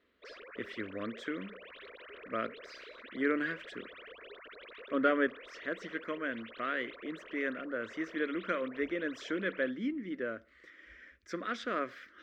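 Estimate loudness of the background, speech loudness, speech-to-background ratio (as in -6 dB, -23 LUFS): -50.0 LUFS, -36.5 LUFS, 13.5 dB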